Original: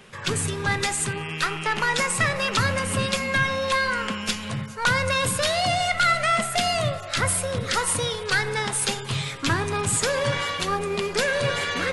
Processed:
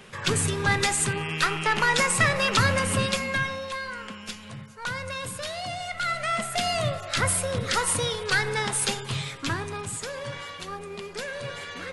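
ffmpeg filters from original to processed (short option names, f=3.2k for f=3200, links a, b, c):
-af "volume=10.5dB,afade=t=out:st=2.84:d=0.87:silence=0.266073,afade=t=in:st=5.86:d=1.19:silence=0.334965,afade=t=out:st=8.81:d=1.17:silence=0.316228"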